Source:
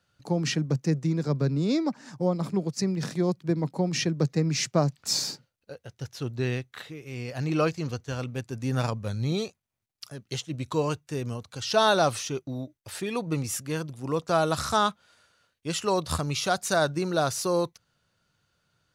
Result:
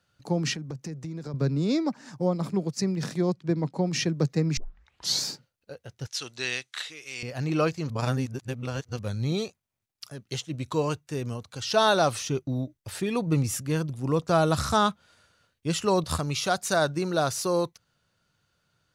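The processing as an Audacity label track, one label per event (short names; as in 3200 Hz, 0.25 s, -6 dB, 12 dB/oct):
0.530000	1.340000	compressor 8:1, threshold -32 dBFS
3.220000	3.870000	LPF 7800 Hz
4.570000	4.570000	tape start 0.64 s
6.070000	7.230000	weighting filter ITU-R 468
7.900000	8.990000	reverse
12.210000	16.040000	low shelf 250 Hz +8 dB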